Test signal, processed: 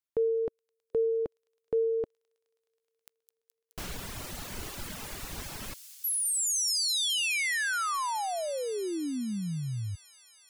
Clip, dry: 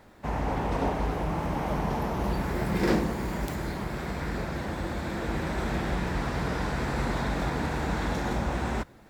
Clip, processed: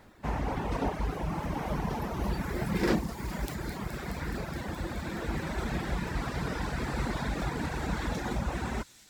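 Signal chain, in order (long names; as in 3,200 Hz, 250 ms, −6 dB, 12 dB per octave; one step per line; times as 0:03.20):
reverb reduction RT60 1.1 s
parametric band 610 Hz −2.5 dB 1.5 octaves
on a send: delay with a high-pass on its return 211 ms, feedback 84%, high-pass 5,600 Hz, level −7.5 dB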